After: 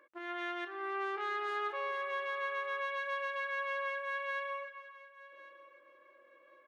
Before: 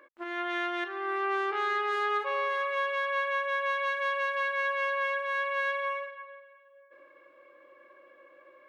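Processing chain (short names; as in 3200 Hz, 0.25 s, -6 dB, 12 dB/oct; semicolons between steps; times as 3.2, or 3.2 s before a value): tempo 1.3×; thinning echo 1.097 s, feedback 24%, high-pass 310 Hz, level -17.5 dB; gain -7 dB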